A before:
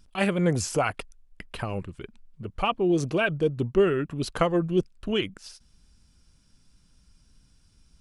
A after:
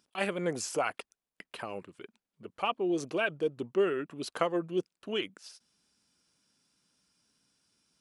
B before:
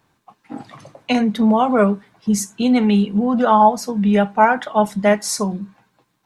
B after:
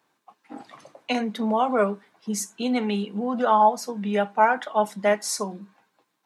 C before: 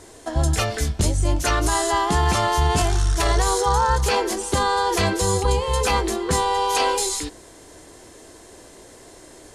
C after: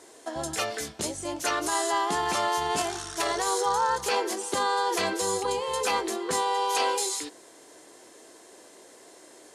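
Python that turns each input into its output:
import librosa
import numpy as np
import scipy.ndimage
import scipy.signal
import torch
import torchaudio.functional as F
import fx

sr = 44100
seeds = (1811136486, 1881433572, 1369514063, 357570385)

y = scipy.signal.sosfilt(scipy.signal.butter(2, 290.0, 'highpass', fs=sr, output='sos'), x)
y = F.gain(torch.from_numpy(y), -5.0).numpy()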